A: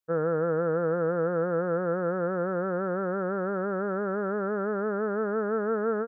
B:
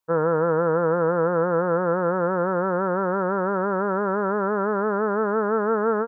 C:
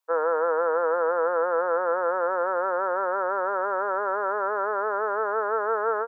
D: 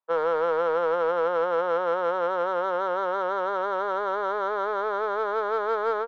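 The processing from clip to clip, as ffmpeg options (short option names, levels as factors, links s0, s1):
-af "equalizer=f=970:t=o:w=0.41:g=12.5,volume=1.68"
-af "highpass=f=480:w=0.5412,highpass=f=480:w=1.3066"
-af "adynamicsmooth=sensitivity=1:basefreq=1500"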